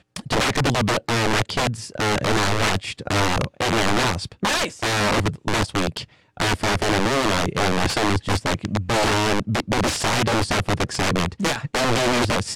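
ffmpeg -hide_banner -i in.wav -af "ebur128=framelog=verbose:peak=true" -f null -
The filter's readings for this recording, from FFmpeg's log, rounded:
Integrated loudness:
  I:         -21.5 LUFS
  Threshold: -31.6 LUFS
Loudness range:
  LRA:         1.0 LU
  Threshold: -41.6 LUFS
  LRA low:   -22.1 LUFS
  LRA high:  -21.2 LUFS
True peak:
  Peak:      -13.7 dBFS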